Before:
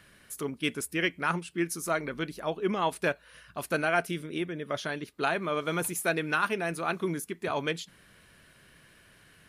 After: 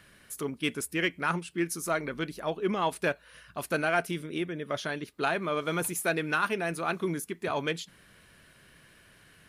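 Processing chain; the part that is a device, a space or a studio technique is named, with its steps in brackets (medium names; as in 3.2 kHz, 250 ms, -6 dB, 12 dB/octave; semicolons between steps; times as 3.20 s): parallel distortion (in parallel at -12.5 dB: hard clipper -26 dBFS, distortion -10 dB); on the sum: trim -1.5 dB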